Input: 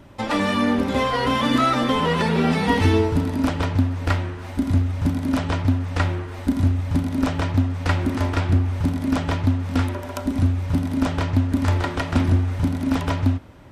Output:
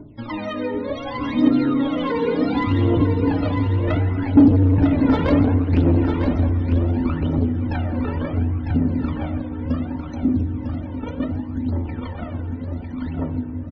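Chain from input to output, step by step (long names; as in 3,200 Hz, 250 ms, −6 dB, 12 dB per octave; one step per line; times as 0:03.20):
source passing by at 0:05.17, 17 m/s, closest 9.4 metres
phase shifter 0.68 Hz, delay 2.3 ms, feedback 79%
feedback delay network reverb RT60 1.7 s, low-frequency decay 1.6×, high-frequency decay 1×, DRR 6.5 dB
in parallel at +1.5 dB: downward compressor, threshold −35 dBFS, peak gain reduction 25 dB
on the sum: Chebyshev low-pass filter 6,200 Hz, order 2
parametric band 100 Hz +4.5 dB 0.26 octaves
hum removal 91.87 Hz, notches 15
spectral peaks only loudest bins 64
soft clipping −17.5 dBFS, distortion −9 dB
parametric band 300 Hz +12 dB 2 octaves
on a send: single-tap delay 951 ms −6.5 dB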